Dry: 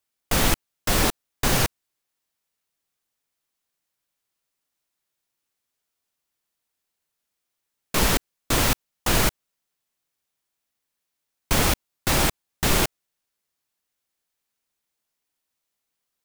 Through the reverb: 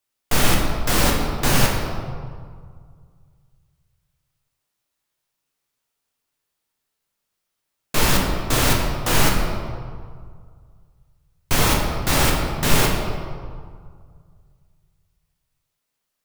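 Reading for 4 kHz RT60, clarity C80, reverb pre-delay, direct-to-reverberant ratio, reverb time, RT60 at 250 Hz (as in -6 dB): 1.1 s, 4.0 dB, 7 ms, -1.5 dB, 2.0 s, 2.1 s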